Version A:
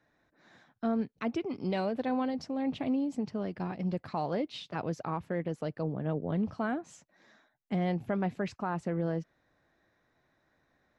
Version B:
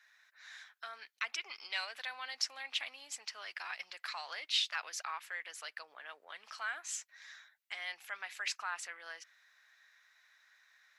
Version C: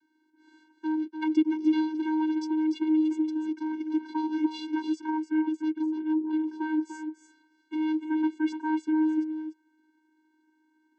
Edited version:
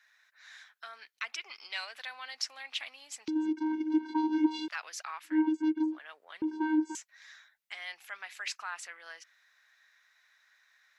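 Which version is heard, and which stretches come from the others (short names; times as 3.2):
B
3.28–4.68 from C
5.32–5.91 from C, crossfade 0.16 s
6.42–6.95 from C
not used: A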